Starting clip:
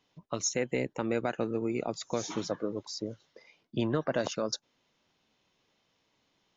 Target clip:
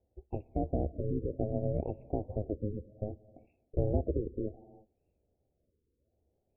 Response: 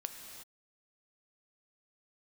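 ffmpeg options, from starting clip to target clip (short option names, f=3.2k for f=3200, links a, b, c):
-filter_complex "[0:a]aeval=exprs='val(0)*sin(2*PI*210*n/s)':c=same,asuperstop=centerf=1500:order=8:qfactor=0.59,equalizer=f=74:t=o:w=0.78:g=10.5,asplit=2[a][b];[1:a]atrim=start_sample=2205[c];[b][c]afir=irnorm=-1:irlink=0,volume=-10dB[d];[a][d]amix=inputs=2:normalize=0,afftfilt=real='re*lt(b*sr/1024,510*pow(2800/510,0.5+0.5*sin(2*PI*0.64*pts/sr)))':imag='im*lt(b*sr/1024,510*pow(2800/510,0.5+0.5*sin(2*PI*0.64*pts/sr)))':win_size=1024:overlap=0.75"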